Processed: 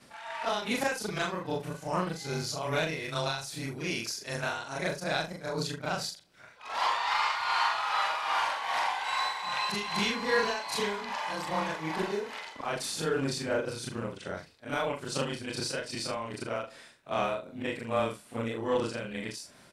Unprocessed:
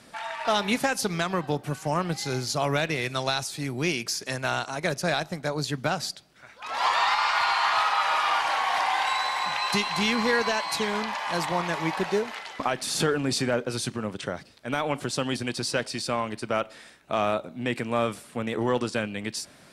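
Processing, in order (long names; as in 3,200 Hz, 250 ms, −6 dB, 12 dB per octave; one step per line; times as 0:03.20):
every overlapping window played backwards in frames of 88 ms
amplitude tremolo 2.5 Hz, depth 53%
double-tracking delay 42 ms −9 dB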